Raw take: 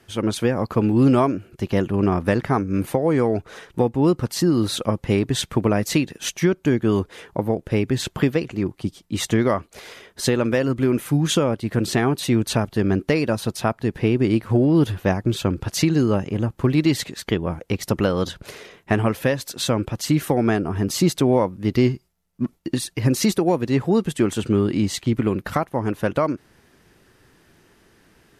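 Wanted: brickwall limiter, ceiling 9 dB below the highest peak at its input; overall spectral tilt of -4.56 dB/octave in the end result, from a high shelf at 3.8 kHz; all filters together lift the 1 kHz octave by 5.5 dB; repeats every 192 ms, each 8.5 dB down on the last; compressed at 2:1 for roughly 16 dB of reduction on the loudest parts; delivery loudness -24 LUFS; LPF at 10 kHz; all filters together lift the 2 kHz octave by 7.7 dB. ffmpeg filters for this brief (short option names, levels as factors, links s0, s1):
-af "lowpass=10000,equalizer=f=1000:t=o:g=5,equalizer=f=2000:t=o:g=6.5,highshelf=f=3800:g=6,acompressor=threshold=0.00708:ratio=2,alimiter=level_in=1.06:limit=0.0631:level=0:latency=1,volume=0.944,aecho=1:1:192|384|576|768:0.376|0.143|0.0543|0.0206,volume=3.76"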